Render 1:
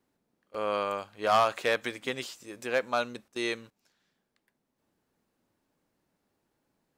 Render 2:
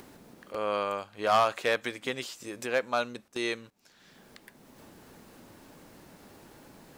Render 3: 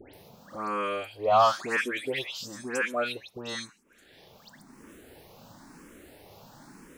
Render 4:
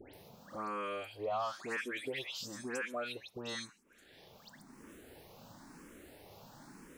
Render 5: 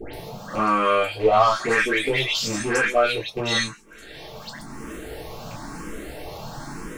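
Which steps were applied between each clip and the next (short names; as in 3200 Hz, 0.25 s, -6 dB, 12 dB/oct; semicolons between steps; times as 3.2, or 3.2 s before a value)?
upward compressor, threshold -32 dBFS
dispersion highs, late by 0.139 s, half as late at 2000 Hz; endless phaser +0.99 Hz; gain +4.5 dB
compressor 3:1, threshold -33 dBFS, peak gain reduction 12.5 dB; gain -4 dB
rattling part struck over -50 dBFS, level -44 dBFS; in parallel at -8 dB: one-sided clip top -41.5 dBFS; on the sum: reverb, pre-delay 3 ms, DRR -6.5 dB; gain +9 dB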